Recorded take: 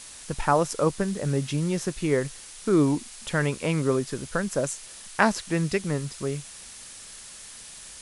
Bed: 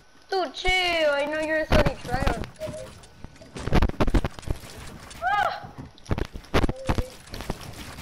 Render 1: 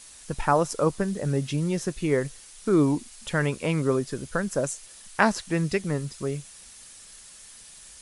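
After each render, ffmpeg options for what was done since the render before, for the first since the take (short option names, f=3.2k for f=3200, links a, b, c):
-af "afftdn=nr=6:nf=-44"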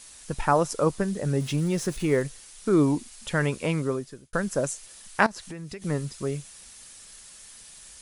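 -filter_complex "[0:a]asettb=1/sr,asplit=3[a][b][c];[a]atrim=end=1.404[d];[b]atrim=start=1.4:end=2.22,asetpts=PTS-STARTPTS,afade=t=in:d=0.004:c=qsin,afade=t=out:st=0.816:d=0.004:c=qsin,aeval=exprs='val(0)+0.5*0.0112*sgn(val(0))':c=same[e];[c]atrim=start=2.216[f];[d][e]acrossfade=d=0.004:c1=hsin:c2=qsin[g];[g][f]acrossfade=d=0.004:c1=qsin:c2=hsin,asettb=1/sr,asplit=3[h][i][j];[h]atrim=end=5.264[k];[i]atrim=start=5.26:end=5.82,asetpts=PTS-STARTPTS,afade=t=in:d=0.004:c=qsin,afade=t=out:st=0.556:d=0.004:c=qsin,acompressor=threshold=-35dB:ratio=6:attack=3.2:release=140:knee=1:detection=peak[l];[j]atrim=start=5.816[m];[k][l]acrossfade=d=0.004:c1=hsin:c2=qsin[n];[n][m]acrossfade=d=0.004:c1=qsin:c2=hsin,asplit=2[o][p];[o]atrim=end=4.33,asetpts=PTS-STARTPTS,afade=t=out:st=3.66:d=0.67[q];[p]atrim=start=4.33,asetpts=PTS-STARTPTS,afade=t=in:d=0.004:c=hsin[r];[q][r]concat=n=2:v=0:a=1"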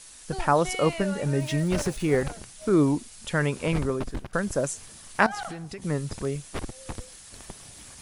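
-filter_complex "[1:a]volume=-12.5dB[a];[0:a][a]amix=inputs=2:normalize=0"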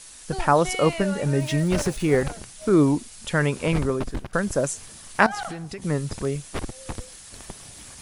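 -af "volume=3dB"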